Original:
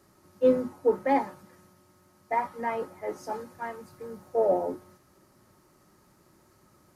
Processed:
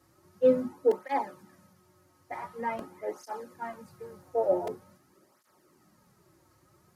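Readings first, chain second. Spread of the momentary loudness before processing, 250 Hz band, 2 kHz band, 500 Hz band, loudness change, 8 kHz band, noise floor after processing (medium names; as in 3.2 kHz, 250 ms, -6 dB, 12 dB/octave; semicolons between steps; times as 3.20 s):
16 LU, -3.5 dB, -4.5 dB, -1.5 dB, -2.0 dB, no reading, -66 dBFS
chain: crackling interface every 0.94 s, samples 128, repeat, from 0.91 s; cancelling through-zero flanger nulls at 0.46 Hz, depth 5.2 ms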